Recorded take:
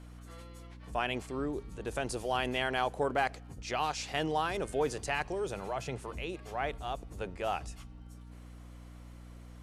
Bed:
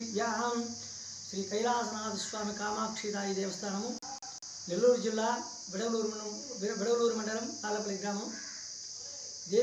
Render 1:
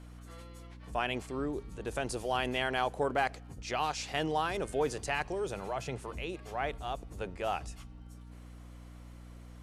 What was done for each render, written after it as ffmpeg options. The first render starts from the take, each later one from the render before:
-af anull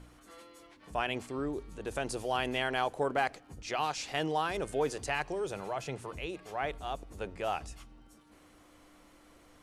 -af "bandreject=f=60:t=h:w=4,bandreject=f=120:t=h:w=4,bandreject=f=180:t=h:w=4,bandreject=f=240:t=h:w=4"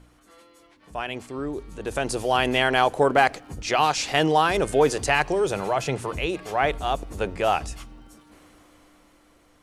-af "dynaudnorm=f=290:g=13:m=4.22"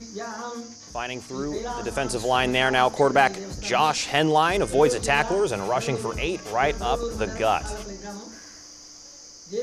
-filter_complex "[1:a]volume=0.841[s0];[0:a][s0]amix=inputs=2:normalize=0"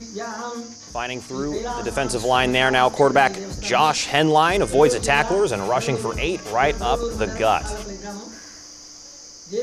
-af "volume=1.5,alimiter=limit=0.708:level=0:latency=1"

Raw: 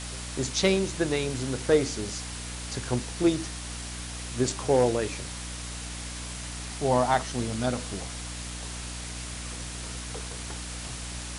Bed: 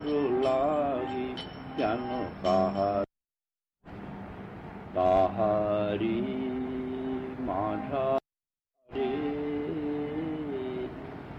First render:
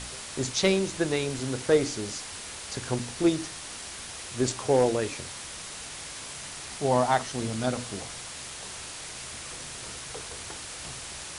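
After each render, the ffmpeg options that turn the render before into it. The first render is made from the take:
-af "bandreject=f=60:t=h:w=4,bandreject=f=120:t=h:w=4,bandreject=f=180:t=h:w=4,bandreject=f=240:t=h:w=4,bandreject=f=300:t=h:w=4"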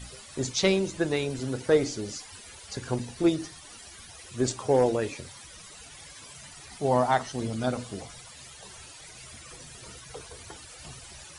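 -af "afftdn=nr=14:nf=-40"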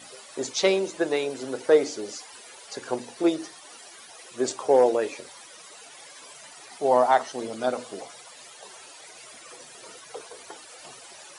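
-af "highpass=340,equalizer=f=590:w=0.59:g=5.5"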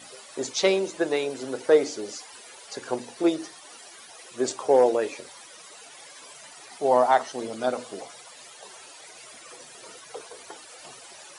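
-af anull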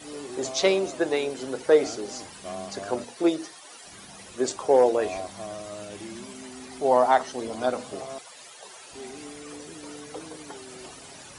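-filter_complex "[1:a]volume=0.282[s0];[0:a][s0]amix=inputs=2:normalize=0"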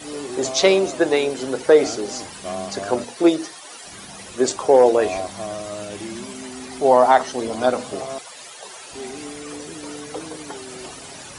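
-af "volume=2.24,alimiter=limit=0.708:level=0:latency=1"

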